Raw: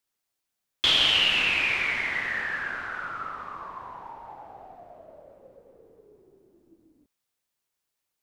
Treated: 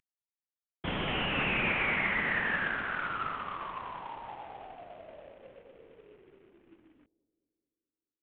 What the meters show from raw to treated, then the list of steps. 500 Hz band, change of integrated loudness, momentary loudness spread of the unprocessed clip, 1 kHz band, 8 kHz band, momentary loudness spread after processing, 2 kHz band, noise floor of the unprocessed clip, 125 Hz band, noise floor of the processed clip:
+2.0 dB, −8.0 dB, 21 LU, 0.0 dB, below −35 dB, 20 LU, −4.0 dB, −83 dBFS, +6.0 dB, below −85 dBFS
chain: variable-slope delta modulation 16 kbit/s
dynamic equaliser 190 Hz, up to +6 dB, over −54 dBFS, Q 1.6
bucket-brigade delay 215 ms, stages 1,024, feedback 60%, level −21 dB

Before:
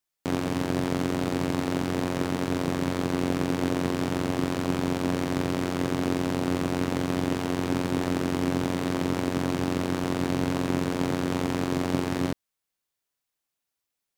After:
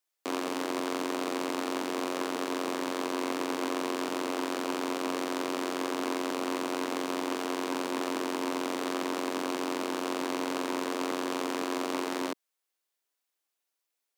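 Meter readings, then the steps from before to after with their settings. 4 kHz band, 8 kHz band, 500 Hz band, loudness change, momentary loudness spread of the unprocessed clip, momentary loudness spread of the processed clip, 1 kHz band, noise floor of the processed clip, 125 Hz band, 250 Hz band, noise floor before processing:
−0.5 dB, 0.0 dB, −3.0 dB, −5.0 dB, 1 LU, 1 LU, −0.5 dB, −84 dBFS, −26.0 dB, −7.0 dB, −85 dBFS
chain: high-pass filter 300 Hz 24 dB per octave
saturating transformer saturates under 1,500 Hz

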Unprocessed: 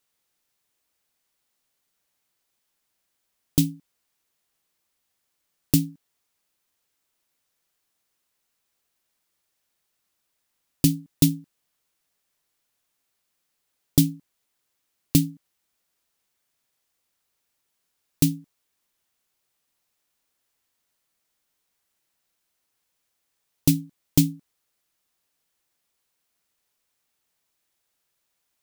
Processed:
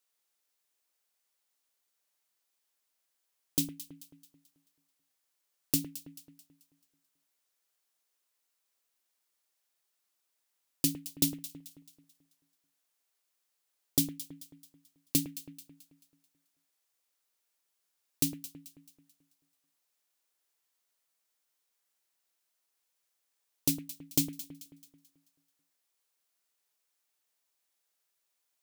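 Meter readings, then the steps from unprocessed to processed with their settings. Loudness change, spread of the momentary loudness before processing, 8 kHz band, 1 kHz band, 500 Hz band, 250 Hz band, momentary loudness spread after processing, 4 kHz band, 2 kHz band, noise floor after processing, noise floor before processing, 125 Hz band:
−8.5 dB, 7 LU, −3.5 dB, can't be measured, −8.0 dB, −12.0 dB, 20 LU, −4.5 dB, −6.0 dB, −81 dBFS, −77 dBFS, −16.5 dB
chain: bass and treble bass −12 dB, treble +3 dB
delay that swaps between a low-pass and a high-pass 109 ms, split 2,200 Hz, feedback 64%, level −10.5 dB
level −6.5 dB

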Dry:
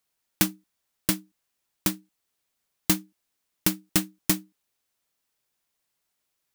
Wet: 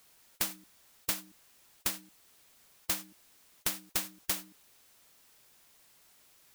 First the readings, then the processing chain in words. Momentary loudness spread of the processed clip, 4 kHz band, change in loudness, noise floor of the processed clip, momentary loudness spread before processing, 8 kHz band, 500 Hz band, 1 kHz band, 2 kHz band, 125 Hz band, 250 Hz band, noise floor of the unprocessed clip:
10 LU, −6.0 dB, −7.5 dB, −63 dBFS, 5 LU, −6.5 dB, −10.0 dB, −6.0 dB, −7.0 dB, −18.5 dB, −19.5 dB, −79 dBFS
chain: hard clipping −18.5 dBFS, distortion −8 dB
every bin compressed towards the loudest bin 4 to 1
level +1.5 dB

